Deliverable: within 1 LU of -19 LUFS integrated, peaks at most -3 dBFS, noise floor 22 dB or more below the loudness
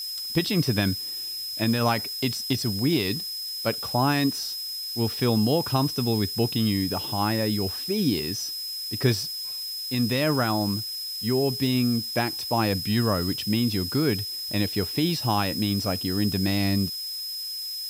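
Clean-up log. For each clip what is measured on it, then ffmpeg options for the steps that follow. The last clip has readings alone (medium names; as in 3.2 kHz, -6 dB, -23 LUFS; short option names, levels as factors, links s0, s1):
steady tone 5.1 kHz; tone level -31 dBFS; noise floor -33 dBFS; noise floor target -48 dBFS; loudness -25.5 LUFS; peak level -8.0 dBFS; loudness target -19.0 LUFS
-> -af "bandreject=f=5100:w=30"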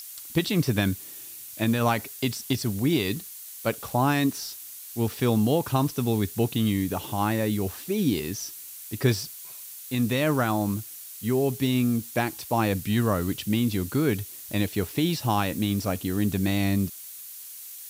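steady tone not found; noise floor -42 dBFS; noise floor target -49 dBFS
-> -af "afftdn=nr=7:nf=-42"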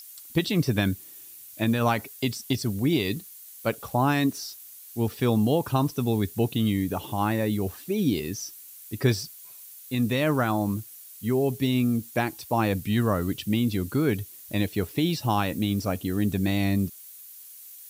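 noise floor -46 dBFS; noise floor target -49 dBFS
-> -af "afftdn=nr=6:nf=-46"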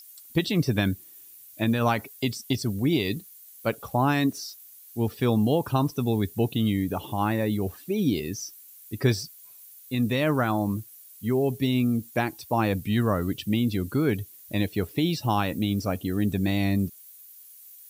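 noise floor -49 dBFS; loudness -26.5 LUFS; peak level -8.5 dBFS; loudness target -19.0 LUFS
-> -af "volume=2.37,alimiter=limit=0.708:level=0:latency=1"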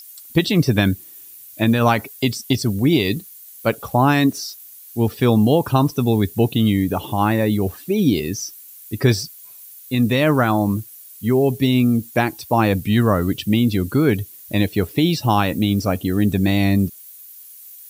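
loudness -19.0 LUFS; peak level -3.0 dBFS; noise floor -42 dBFS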